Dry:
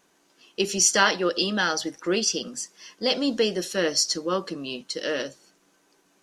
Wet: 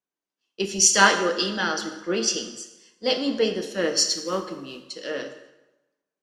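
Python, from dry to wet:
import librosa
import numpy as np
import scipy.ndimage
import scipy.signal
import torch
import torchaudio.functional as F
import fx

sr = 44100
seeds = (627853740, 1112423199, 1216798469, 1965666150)

y = fx.high_shelf(x, sr, hz=10000.0, db=8.0)
y = fx.mod_noise(y, sr, seeds[0], snr_db=18, at=(4.07, 4.89), fade=0.02)
y = fx.air_absorb(y, sr, metres=53.0)
y = fx.rev_plate(y, sr, seeds[1], rt60_s=1.7, hf_ratio=0.75, predelay_ms=0, drr_db=5.0)
y = fx.band_widen(y, sr, depth_pct=70)
y = y * librosa.db_to_amplitude(-1.5)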